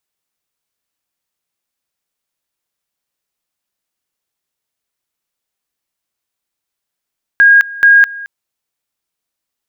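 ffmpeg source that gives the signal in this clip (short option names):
-f lavfi -i "aevalsrc='pow(10,(-3-20.5*gte(mod(t,0.43),0.21))/20)*sin(2*PI*1630*t)':d=0.86:s=44100"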